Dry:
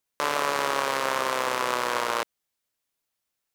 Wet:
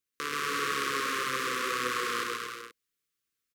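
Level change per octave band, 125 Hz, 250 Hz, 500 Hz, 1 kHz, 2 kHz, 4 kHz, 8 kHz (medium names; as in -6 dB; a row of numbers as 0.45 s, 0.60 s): -2.5 dB, -2.0 dB, -8.0 dB, -6.0 dB, -2.0 dB, -2.0 dB, -2.5 dB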